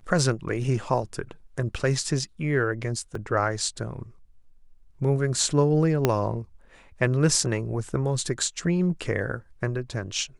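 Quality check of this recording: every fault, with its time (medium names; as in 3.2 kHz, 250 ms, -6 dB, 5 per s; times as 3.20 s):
3.15 s: dropout 3.3 ms
6.05 s: pop -6 dBFS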